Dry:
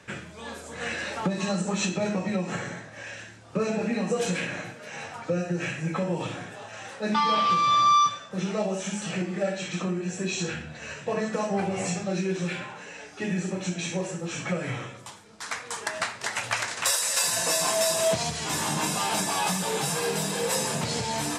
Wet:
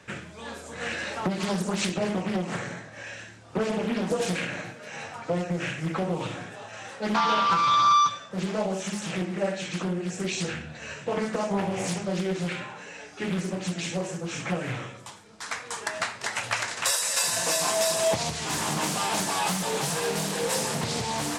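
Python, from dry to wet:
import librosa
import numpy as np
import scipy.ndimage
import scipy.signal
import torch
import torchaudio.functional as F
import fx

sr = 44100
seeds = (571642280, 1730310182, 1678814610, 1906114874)

y = fx.doppler_dist(x, sr, depth_ms=0.62)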